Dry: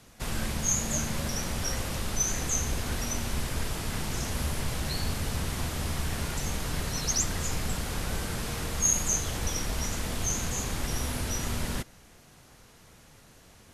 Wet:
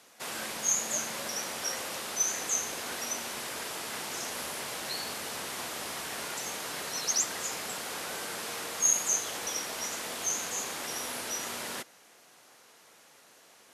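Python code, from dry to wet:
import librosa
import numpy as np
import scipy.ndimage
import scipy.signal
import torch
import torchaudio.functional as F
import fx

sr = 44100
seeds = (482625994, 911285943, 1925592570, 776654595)

y = scipy.signal.sosfilt(scipy.signal.butter(2, 430.0, 'highpass', fs=sr, output='sos'), x)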